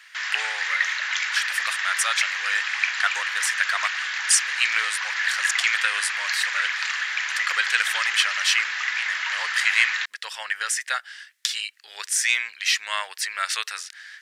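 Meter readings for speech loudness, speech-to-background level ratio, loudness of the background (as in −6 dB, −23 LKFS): −25.0 LKFS, −0.5 dB, −24.5 LKFS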